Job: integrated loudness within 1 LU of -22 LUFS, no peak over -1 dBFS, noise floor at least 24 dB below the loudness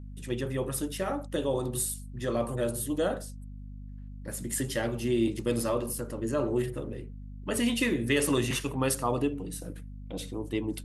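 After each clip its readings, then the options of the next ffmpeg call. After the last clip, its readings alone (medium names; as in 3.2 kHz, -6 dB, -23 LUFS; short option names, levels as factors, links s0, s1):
hum 50 Hz; highest harmonic 250 Hz; hum level -40 dBFS; loudness -30.5 LUFS; peak level -14.0 dBFS; loudness target -22.0 LUFS
-> -af "bandreject=f=50:t=h:w=4,bandreject=f=100:t=h:w=4,bandreject=f=150:t=h:w=4,bandreject=f=200:t=h:w=4,bandreject=f=250:t=h:w=4"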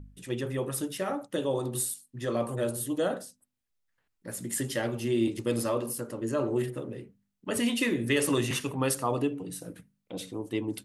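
hum not found; loudness -30.5 LUFS; peak level -13.5 dBFS; loudness target -22.0 LUFS
-> -af "volume=2.66"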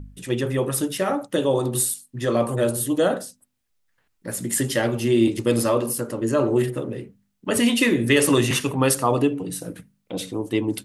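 loudness -22.0 LUFS; peak level -5.0 dBFS; noise floor -71 dBFS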